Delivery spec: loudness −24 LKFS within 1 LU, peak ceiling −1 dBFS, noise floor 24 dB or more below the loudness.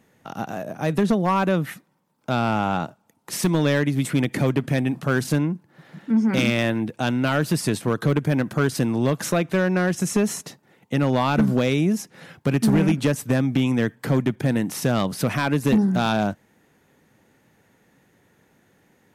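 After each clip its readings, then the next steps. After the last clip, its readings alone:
share of clipped samples 0.9%; peaks flattened at −12.5 dBFS; integrated loudness −22.5 LKFS; sample peak −12.5 dBFS; target loudness −24.0 LKFS
→ clipped peaks rebuilt −12.5 dBFS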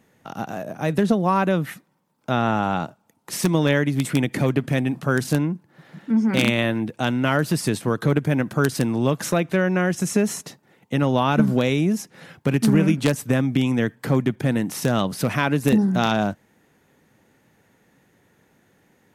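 share of clipped samples 0.0%; integrated loudness −22.0 LKFS; sample peak −3.5 dBFS; target loudness −24.0 LKFS
→ level −2 dB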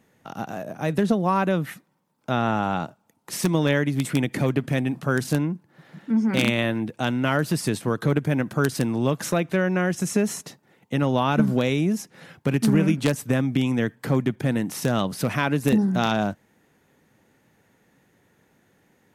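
integrated loudness −24.0 LKFS; sample peak −5.5 dBFS; background noise floor −64 dBFS

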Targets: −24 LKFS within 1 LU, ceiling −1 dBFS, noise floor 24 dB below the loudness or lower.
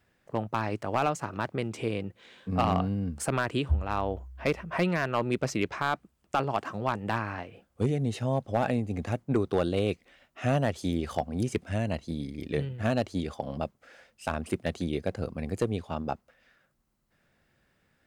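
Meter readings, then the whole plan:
share of clipped samples 0.3%; peaks flattened at −16.5 dBFS; integrated loudness −31.0 LKFS; sample peak −16.5 dBFS; target loudness −24.0 LKFS
→ clipped peaks rebuilt −16.5 dBFS
level +7 dB

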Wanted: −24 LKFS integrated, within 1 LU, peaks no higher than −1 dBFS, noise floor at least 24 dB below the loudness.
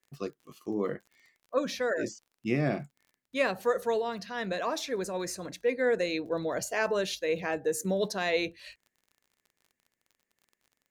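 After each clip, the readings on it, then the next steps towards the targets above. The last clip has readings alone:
crackle rate 33 per second; integrated loudness −31.0 LKFS; sample peak −14.0 dBFS; target loudness −24.0 LKFS
→ click removal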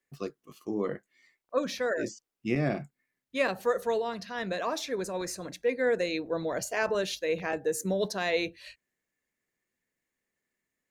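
crackle rate 0 per second; integrated loudness −31.5 LKFS; sample peak −14.0 dBFS; target loudness −24.0 LKFS
→ level +7.5 dB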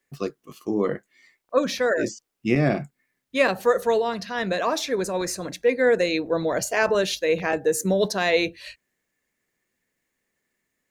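integrated loudness −24.0 LKFS; sample peak −6.5 dBFS; background noise floor −79 dBFS

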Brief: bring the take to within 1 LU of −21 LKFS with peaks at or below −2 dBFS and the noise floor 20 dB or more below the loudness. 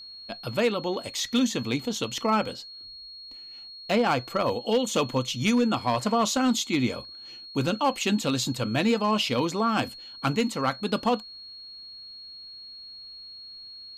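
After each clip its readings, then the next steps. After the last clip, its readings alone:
share of clipped samples 0.3%; peaks flattened at −16.0 dBFS; interfering tone 4,300 Hz; level of the tone −41 dBFS; integrated loudness −26.0 LKFS; sample peak −16.0 dBFS; target loudness −21.0 LKFS
→ clipped peaks rebuilt −16 dBFS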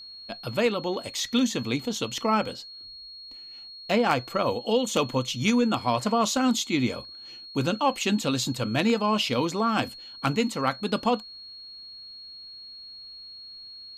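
share of clipped samples 0.0%; interfering tone 4,300 Hz; level of the tone −41 dBFS
→ notch filter 4,300 Hz, Q 30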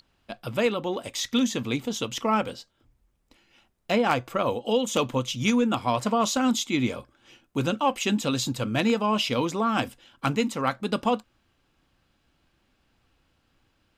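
interfering tone none found; integrated loudness −26.0 LKFS; sample peak −7.5 dBFS; target loudness −21.0 LKFS
→ level +5 dB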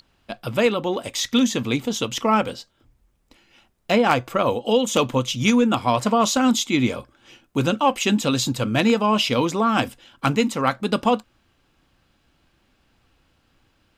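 integrated loudness −21.0 LKFS; sample peak −2.5 dBFS; background noise floor −65 dBFS

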